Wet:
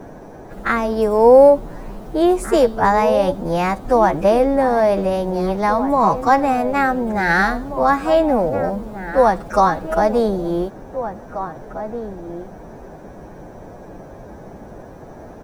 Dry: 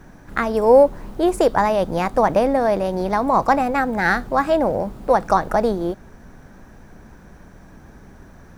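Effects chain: outdoor echo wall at 170 m, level -11 dB; time stretch by phase-locked vocoder 1.8×; band noise 83–760 Hz -41 dBFS; gain +2 dB

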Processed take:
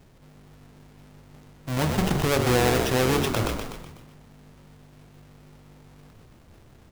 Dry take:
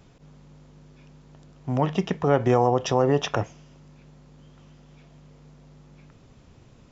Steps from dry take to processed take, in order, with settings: half-waves squared off; de-hum 47.1 Hz, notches 33; frequency-shifting echo 0.124 s, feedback 57%, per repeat -47 Hz, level -7 dB; sustainer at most 43 dB/s; gain -5.5 dB

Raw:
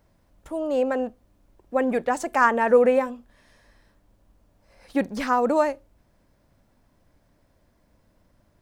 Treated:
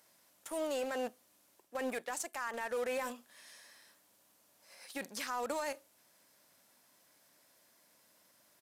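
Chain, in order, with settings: HPF 140 Hz 12 dB/oct; tilt +4.5 dB/oct; reverse; compressor 6:1, threshold -31 dBFS, peak gain reduction 18.5 dB; reverse; limiter -28 dBFS, peak gain reduction 9.5 dB; in parallel at -10 dB: bit-crush 6-bit; on the sum: downsampling 32000 Hz; gain -2.5 dB

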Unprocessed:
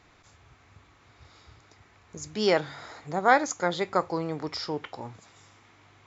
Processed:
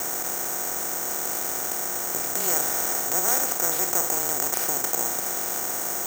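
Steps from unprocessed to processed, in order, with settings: per-bin compression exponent 0.2; frequency shift -26 Hz; careless resampling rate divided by 6×, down none, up zero stuff; gain -15 dB

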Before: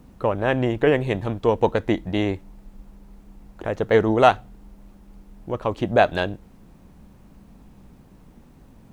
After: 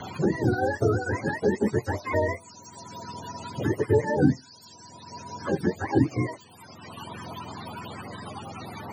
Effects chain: spectrum mirrored in octaves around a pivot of 440 Hz; LFO notch sine 5.1 Hz 520–1800 Hz; three-band squash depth 70%

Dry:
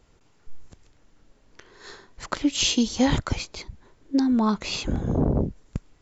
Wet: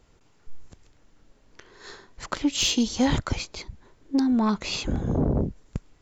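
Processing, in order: soft clip -12.5 dBFS, distortion -22 dB

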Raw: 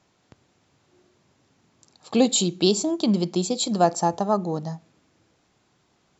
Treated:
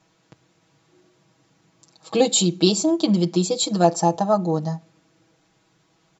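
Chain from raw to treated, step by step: comb 6.2 ms, depth 90%

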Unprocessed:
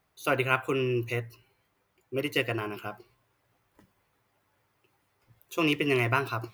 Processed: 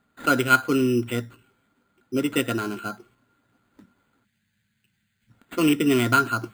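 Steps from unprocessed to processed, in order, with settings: sample-and-hold 8×; spectral gain 4.24–5.3, 220–1500 Hz -19 dB; small resonant body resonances 240/1400 Hz, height 17 dB, ringing for 50 ms

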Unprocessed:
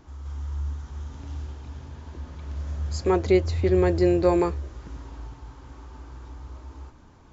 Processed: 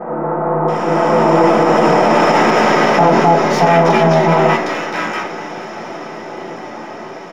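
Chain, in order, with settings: per-bin compression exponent 0.4; Doppler pass-by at 1.86, 32 m/s, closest 17 m; dynamic EQ 870 Hz, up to +4 dB, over -45 dBFS, Q 0.86; full-wave rectifier; bands offset in time lows, highs 0.68 s, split 1300 Hz; reverb RT60 0.30 s, pre-delay 3 ms, DRR -11 dB; maximiser +11 dB; gain -1 dB

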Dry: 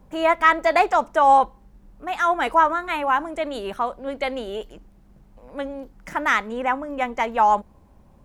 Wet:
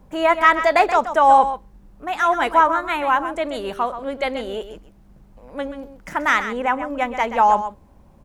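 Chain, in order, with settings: echo 0.129 s -11 dB; gain +2 dB

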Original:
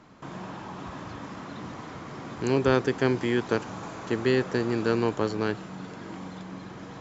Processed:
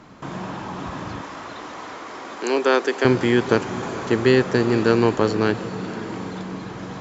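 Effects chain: 1.21–3.05 Bessel high-pass 430 Hz, order 8; diffused feedback echo 0.452 s, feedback 56%, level -15 dB; gain +7.5 dB

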